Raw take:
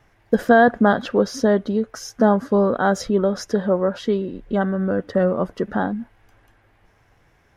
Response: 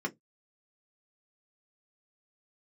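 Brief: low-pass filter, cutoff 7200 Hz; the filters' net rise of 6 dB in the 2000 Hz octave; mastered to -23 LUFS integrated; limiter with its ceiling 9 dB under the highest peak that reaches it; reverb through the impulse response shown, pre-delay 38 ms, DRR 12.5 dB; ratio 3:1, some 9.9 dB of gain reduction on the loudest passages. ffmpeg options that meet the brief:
-filter_complex "[0:a]lowpass=7.2k,equalizer=f=2k:t=o:g=8.5,acompressor=threshold=-20dB:ratio=3,alimiter=limit=-17.5dB:level=0:latency=1,asplit=2[a][b];[1:a]atrim=start_sample=2205,adelay=38[c];[b][c]afir=irnorm=-1:irlink=0,volume=-17dB[d];[a][d]amix=inputs=2:normalize=0,volume=4.5dB"

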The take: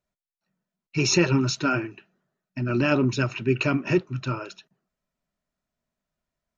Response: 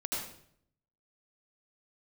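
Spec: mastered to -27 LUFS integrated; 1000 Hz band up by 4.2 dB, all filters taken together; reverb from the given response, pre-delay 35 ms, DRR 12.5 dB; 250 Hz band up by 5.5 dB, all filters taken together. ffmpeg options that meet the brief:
-filter_complex "[0:a]equalizer=f=250:t=o:g=6.5,equalizer=f=1k:t=o:g=6,asplit=2[a][b];[1:a]atrim=start_sample=2205,adelay=35[c];[b][c]afir=irnorm=-1:irlink=0,volume=-16.5dB[d];[a][d]amix=inputs=2:normalize=0,volume=-6.5dB"

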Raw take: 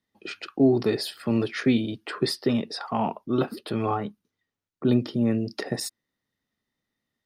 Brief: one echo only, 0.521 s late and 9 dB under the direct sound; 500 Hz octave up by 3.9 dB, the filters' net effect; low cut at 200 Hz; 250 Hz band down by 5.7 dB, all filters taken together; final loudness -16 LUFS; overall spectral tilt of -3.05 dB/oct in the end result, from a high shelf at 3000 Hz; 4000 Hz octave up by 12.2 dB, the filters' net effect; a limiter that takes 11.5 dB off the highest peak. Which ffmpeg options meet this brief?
-af "highpass=200,equalizer=f=250:t=o:g=-8.5,equalizer=f=500:t=o:g=9,highshelf=f=3k:g=8,equalizer=f=4k:t=o:g=8.5,alimiter=limit=-15.5dB:level=0:latency=1,aecho=1:1:521:0.355,volume=11dB"

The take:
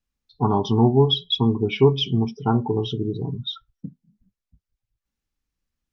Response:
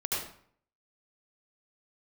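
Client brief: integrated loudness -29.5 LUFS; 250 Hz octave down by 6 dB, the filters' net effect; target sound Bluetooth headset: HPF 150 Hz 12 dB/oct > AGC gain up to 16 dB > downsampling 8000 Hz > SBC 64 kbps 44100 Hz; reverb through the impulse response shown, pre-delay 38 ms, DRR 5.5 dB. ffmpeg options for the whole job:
-filter_complex "[0:a]equalizer=f=250:t=o:g=-6.5,asplit=2[a][b];[1:a]atrim=start_sample=2205,adelay=38[c];[b][c]afir=irnorm=-1:irlink=0,volume=-12dB[d];[a][d]amix=inputs=2:normalize=0,highpass=150,dynaudnorm=m=16dB,aresample=8000,aresample=44100,volume=-6dB" -ar 44100 -c:a sbc -b:a 64k

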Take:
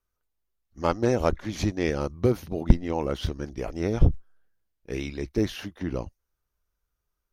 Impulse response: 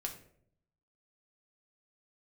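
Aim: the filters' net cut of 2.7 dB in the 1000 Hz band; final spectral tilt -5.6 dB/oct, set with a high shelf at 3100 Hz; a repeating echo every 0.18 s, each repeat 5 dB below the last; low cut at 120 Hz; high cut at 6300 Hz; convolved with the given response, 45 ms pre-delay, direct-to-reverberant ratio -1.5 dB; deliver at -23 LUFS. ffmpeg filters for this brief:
-filter_complex "[0:a]highpass=120,lowpass=6.3k,equalizer=f=1k:t=o:g=-4.5,highshelf=f=3.1k:g=7.5,aecho=1:1:180|360|540|720|900|1080|1260:0.562|0.315|0.176|0.0988|0.0553|0.031|0.0173,asplit=2[a][b];[1:a]atrim=start_sample=2205,adelay=45[c];[b][c]afir=irnorm=-1:irlink=0,volume=2dB[d];[a][d]amix=inputs=2:normalize=0,volume=1dB"

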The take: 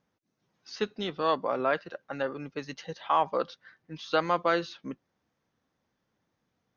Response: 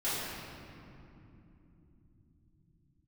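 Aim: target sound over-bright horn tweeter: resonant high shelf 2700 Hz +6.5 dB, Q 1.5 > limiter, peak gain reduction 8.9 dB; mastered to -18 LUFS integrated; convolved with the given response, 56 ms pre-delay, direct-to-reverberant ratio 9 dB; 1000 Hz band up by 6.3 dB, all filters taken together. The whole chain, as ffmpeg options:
-filter_complex "[0:a]equalizer=f=1k:t=o:g=8.5,asplit=2[a][b];[1:a]atrim=start_sample=2205,adelay=56[c];[b][c]afir=irnorm=-1:irlink=0,volume=-17.5dB[d];[a][d]amix=inputs=2:normalize=0,highshelf=f=2.7k:t=q:w=1.5:g=6.5,volume=12dB,alimiter=limit=-4dB:level=0:latency=1"

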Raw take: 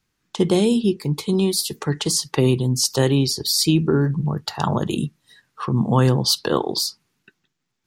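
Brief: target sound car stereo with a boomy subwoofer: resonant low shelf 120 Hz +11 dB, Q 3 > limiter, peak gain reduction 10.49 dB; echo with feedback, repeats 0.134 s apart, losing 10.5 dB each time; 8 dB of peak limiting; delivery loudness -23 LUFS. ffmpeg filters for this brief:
-af "alimiter=limit=-11dB:level=0:latency=1,lowshelf=f=120:t=q:w=3:g=11,aecho=1:1:134|268|402:0.299|0.0896|0.0269,volume=4.5dB,alimiter=limit=-14.5dB:level=0:latency=1"

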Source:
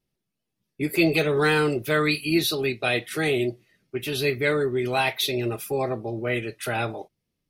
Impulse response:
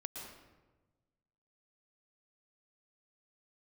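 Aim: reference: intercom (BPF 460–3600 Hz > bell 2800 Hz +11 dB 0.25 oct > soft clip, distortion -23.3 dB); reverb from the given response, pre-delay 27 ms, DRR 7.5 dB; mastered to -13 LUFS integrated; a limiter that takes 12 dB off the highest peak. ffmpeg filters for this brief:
-filter_complex "[0:a]alimiter=limit=-20dB:level=0:latency=1,asplit=2[a][b];[1:a]atrim=start_sample=2205,adelay=27[c];[b][c]afir=irnorm=-1:irlink=0,volume=-6dB[d];[a][d]amix=inputs=2:normalize=0,highpass=460,lowpass=3.6k,equalizer=f=2.8k:t=o:w=0.25:g=11,asoftclip=threshold=-20dB,volume=18dB"

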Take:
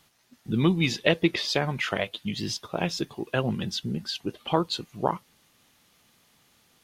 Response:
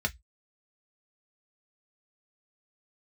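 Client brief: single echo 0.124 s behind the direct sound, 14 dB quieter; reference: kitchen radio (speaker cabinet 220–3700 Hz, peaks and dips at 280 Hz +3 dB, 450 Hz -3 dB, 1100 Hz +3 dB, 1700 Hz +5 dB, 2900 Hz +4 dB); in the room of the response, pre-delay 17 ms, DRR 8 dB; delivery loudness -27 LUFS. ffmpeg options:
-filter_complex "[0:a]aecho=1:1:124:0.2,asplit=2[a][b];[1:a]atrim=start_sample=2205,adelay=17[c];[b][c]afir=irnorm=-1:irlink=0,volume=-15dB[d];[a][d]amix=inputs=2:normalize=0,highpass=220,equalizer=f=280:t=q:w=4:g=3,equalizer=f=450:t=q:w=4:g=-3,equalizer=f=1.1k:t=q:w=4:g=3,equalizer=f=1.7k:t=q:w=4:g=5,equalizer=f=2.9k:t=q:w=4:g=4,lowpass=f=3.7k:w=0.5412,lowpass=f=3.7k:w=1.3066,volume=0.5dB"

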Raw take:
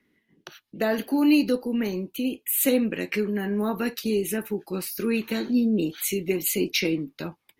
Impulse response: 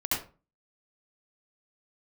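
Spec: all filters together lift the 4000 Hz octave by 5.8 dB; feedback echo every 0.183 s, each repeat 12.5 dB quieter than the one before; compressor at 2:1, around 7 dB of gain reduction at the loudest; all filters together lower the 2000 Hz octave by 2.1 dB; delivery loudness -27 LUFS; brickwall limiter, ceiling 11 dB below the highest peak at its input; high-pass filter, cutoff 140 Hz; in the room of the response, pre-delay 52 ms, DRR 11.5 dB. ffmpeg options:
-filter_complex "[0:a]highpass=140,equalizer=f=2k:t=o:g=-6.5,equalizer=f=4k:t=o:g=9,acompressor=threshold=-28dB:ratio=2,alimiter=limit=-23dB:level=0:latency=1,aecho=1:1:183|366|549:0.237|0.0569|0.0137,asplit=2[a][b];[1:a]atrim=start_sample=2205,adelay=52[c];[b][c]afir=irnorm=-1:irlink=0,volume=-20dB[d];[a][d]amix=inputs=2:normalize=0,volume=4.5dB"

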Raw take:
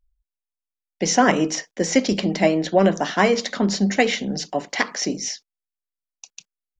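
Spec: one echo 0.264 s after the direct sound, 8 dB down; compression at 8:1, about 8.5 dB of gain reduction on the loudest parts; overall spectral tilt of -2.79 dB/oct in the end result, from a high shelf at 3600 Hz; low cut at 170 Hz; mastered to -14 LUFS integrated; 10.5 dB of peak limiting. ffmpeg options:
-af "highpass=170,highshelf=f=3.6k:g=5,acompressor=threshold=-20dB:ratio=8,alimiter=limit=-17dB:level=0:latency=1,aecho=1:1:264:0.398,volume=13dB"

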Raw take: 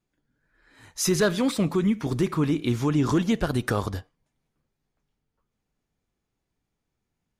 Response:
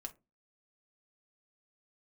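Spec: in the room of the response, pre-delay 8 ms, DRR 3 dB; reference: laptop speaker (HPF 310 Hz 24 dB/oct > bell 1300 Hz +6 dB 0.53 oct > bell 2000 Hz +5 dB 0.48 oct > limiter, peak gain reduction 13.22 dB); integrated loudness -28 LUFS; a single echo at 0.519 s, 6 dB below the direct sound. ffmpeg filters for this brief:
-filter_complex "[0:a]aecho=1:1:519:0.501,asplit=2[a][b];[1:a]atrim=start_sample=2205,adelay=8[c];[b][c]afir=irnorm=-1:irlink=0,volume=1dB[d];[a][d]amix=inputs=2:normalize=0,highpass=f=310:w=0.5412,highpass=f=310:w=1.3066,equalizer=f=1.3k:t=o:w=0.53:g=6,equalizer=f=2k:t=o:w=0.48:g=5,volume=2.5dB,alimiter=limit=-18.5dB:level=0:latency=1"

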